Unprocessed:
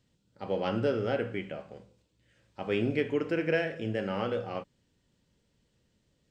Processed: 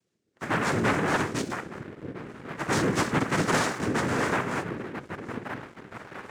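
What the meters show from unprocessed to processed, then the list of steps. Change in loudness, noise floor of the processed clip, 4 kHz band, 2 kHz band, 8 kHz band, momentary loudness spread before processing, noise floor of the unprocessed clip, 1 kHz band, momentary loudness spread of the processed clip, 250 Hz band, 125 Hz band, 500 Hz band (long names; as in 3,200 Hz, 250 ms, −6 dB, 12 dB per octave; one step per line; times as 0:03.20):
+4.0 dB, −75 dBFS, +7.5 dB, +9.0 dB, can't be measured, 12 LU, −74 dBFS, +11.0 dB, 15 LU, +5.0 dB, +6.0 dB, 0.0 dB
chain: echo through a band-pass that steps 655 ms, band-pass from 160 Hz, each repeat 0.7 octaves, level −8 dB
cochlear-implant simulation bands 3
leveller curve on the samples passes 2
level −1.5 dB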